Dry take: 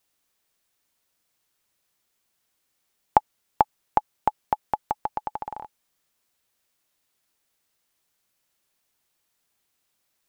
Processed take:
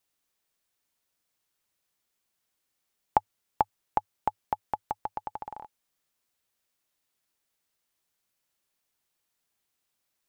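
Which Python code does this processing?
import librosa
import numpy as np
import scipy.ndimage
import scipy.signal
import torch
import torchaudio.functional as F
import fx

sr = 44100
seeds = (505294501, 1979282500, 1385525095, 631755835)

y = fx.dynamic_eq(x, sr, hz=100.0, q=4.4, threshold_db=-58.0, ratio=4.0, max_db=4)
y = F.gain(torch.from_numpy(y), -5.5).numpy()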